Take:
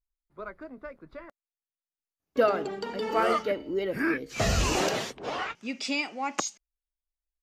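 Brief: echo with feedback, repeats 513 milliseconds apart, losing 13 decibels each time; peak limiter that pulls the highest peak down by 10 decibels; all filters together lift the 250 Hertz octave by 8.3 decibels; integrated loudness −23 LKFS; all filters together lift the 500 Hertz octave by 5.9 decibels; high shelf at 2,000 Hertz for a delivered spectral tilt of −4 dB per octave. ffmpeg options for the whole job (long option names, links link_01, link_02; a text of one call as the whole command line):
ffmpeg -i in.wav -af "equalizer=frequency=250:width_type=o:gain=9,equalizer=frequency=500:width_type=o:gain=4.5,highshelf=frequency=2000:gain=4.5,alimiter=limit=-15dB:level=0:latency=1,aecho=1:1:513|1026|1539:0.224|0.0493|0.0108,volume=3.5dB" out.wav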